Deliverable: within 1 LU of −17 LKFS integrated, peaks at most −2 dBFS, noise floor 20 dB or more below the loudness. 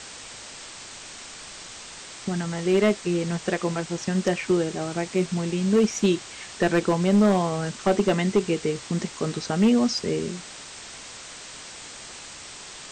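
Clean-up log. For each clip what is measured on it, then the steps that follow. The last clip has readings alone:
share of clipped samples 0.7%; peaks flattened at −13.0 dBFS; background noise floor −41 dBFS; target noise floor −44 dBFS; integrated loudness −24.0 LKFS; sample peak −13.0 dBFS; target loudness −17.0 LKFS
→ clipped peaks rebuilt −13 dBFS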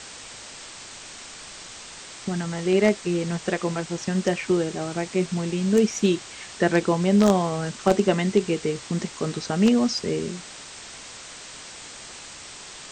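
share of clipped samples 0.0%; background noise floor −41 dBFS; target noise floor −44 dBFS
→ noise reduction from a noise print 6 dB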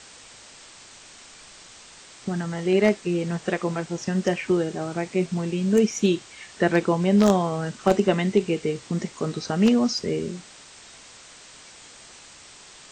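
background noise floor −47 dBFS; integrated loudness −23.5 LKFS; sample peak −4.0 dBFS; target loudness −17.0 LKFS
→ level +6.5 dB
brickwall limiter −2 dBFS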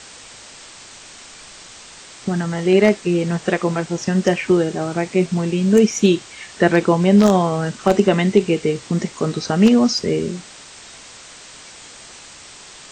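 integrated loudness −17.5 LKFS; sample peak −2.0 dBFS; background noise floor −41 dBFS

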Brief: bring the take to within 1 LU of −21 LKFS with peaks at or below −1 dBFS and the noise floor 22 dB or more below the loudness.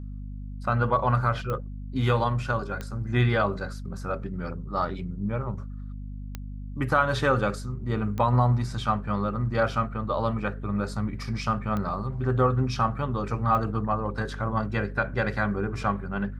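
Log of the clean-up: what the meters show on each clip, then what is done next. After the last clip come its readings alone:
number of clicks 6; mains hum 50 Hz; hum harmonics up to 250 Hz; level of the hum −34 dBFS; integrated loudness −27.0 LKFS; sample peak −10.0 dBFS; target loudness −21.0 LKFS
→ click removal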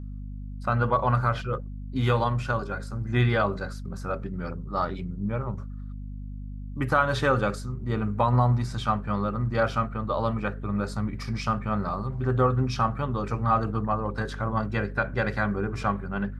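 number of clicks 0; mains hum 50 Hz; hum harmonics up to 250 Hz; level of the hum −34 dBFS
→ hum removal 50 Hz, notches 5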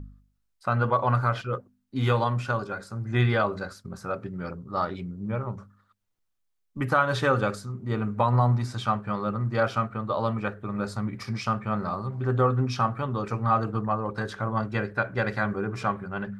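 mains hum none found; integrated loudness −27.5 LKFS; sample peak −10.5 dBFS; target loudness −21.0 LKFS
→ level +6.5 dB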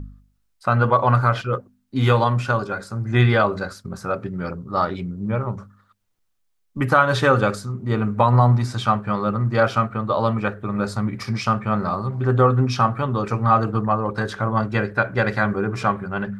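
integrated loudness −21.0 LKFS; sample peak −4.0 dBFS; background noise floor −68 dBFS

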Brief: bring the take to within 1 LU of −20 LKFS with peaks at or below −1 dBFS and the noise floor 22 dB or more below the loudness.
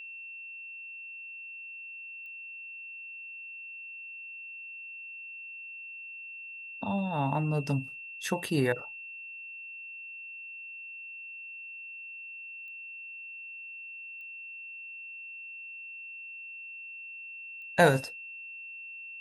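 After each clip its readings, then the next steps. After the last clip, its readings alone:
number of clicks 4; interfering tone 2,700 Hz; level of the tone −41 dBFS; integrated loudness −36.0 LKFS; sample peak −9.0 dBFS; target loudness −20.0 LKFS
→ click removal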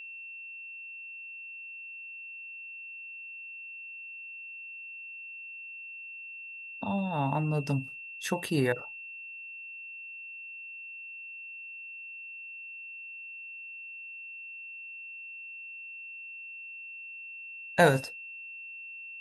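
number of clicks 0; interfering tone 2,700 Hz; level of the tone −41 dBFS
→ notch filter 2,700 Hz, Q 30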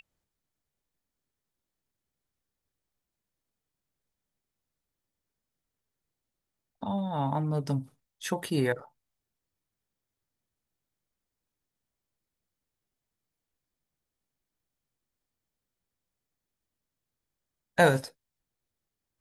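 interfering tone none found; integrated loudness −29.0 LKFS; sample peak −9.0 dBFS; target loudness −20.0 LKFS
→ level +9 dB
brickwall limiter −1 dBFS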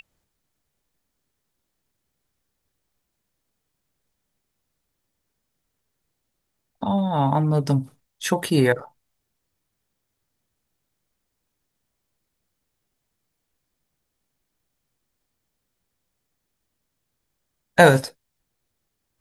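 integrated loudness −20.5 LKFS; sample peak −1.0 dBFS; background noise floor −78 dBFS

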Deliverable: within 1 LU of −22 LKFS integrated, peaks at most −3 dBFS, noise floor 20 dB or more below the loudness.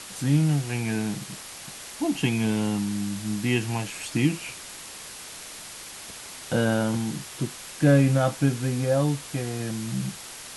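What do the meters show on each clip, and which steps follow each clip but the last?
background noise floor −41 dBFS; target noise floor −46 dBFS; integrated loudness −26.0 LKFS; sample peak −7.5 dBFS; target loudness −22.0 LKFS
→ broadband denoise 6 dB, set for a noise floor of −41 dBFS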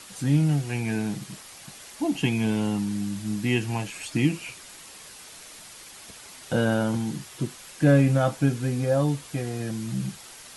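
background noise floor −46 dBFS; integrated loudness −26.0 LKFS; sample peak −7.5 dBFS; target loudness −22.0 LKFS
→ level +4 dB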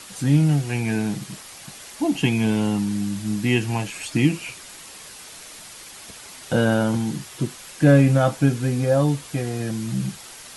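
integrated loudness −22.0 LKFS; sample peak −3.5 dBFS; background noise floor −42 dBFS

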